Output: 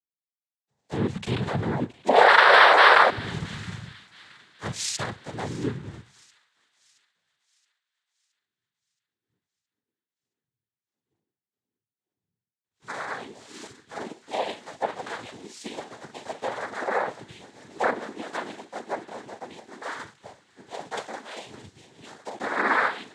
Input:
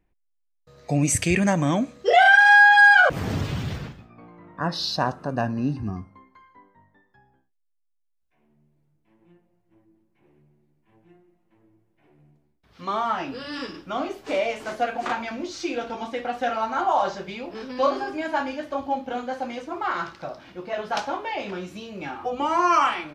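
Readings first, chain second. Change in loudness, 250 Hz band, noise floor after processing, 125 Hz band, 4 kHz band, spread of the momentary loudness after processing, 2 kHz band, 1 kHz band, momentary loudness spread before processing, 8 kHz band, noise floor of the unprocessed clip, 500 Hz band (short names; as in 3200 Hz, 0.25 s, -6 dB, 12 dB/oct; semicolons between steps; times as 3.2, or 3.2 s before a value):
-1.0 dB, -7.0 dB, under -85 dBFS, -5.0 dB, +1.5 dB, 25 LU, -5.0 dB, -1.5 dB, 20 LU, -6.0 dB, -71 dBFS, -0.5 dB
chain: block floating point 3-bit; notches 50/100/150/200 Hz; treble ducked by the level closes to 2000 Hz, closed at -17 dBFS; noise vocoder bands 6; thin delay 0.671 s, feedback 65%, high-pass 2000 Hz, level -13 dB; three-band expander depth 70%; gain -6.5 dB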